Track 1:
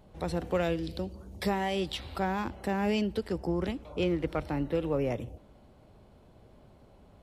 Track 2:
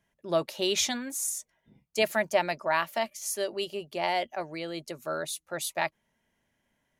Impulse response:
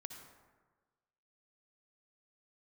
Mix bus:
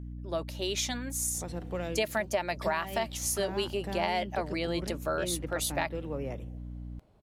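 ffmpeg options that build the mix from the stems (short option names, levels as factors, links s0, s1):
-filter_complex "[0:a]adelay=1200,volume=0.447[s0];[1:a]dynaudnorm=f=350:g=7:m=3.76,aeval=exprs='val(0)+0.0224*(sin(2*PI*60*n/s)+sin(2*PI*2*60*n/s)/2+sin(2*PI*3*60*n/s)/3+sin(2*PI*4*60*n/s)/4+sin(2*PI*5*60*n/s)/5)':c=same,volume=0.501[s1];[s0][s1]amix=inputs=2:normalize=0,acompressor=threshold=0.0501:ratio=6"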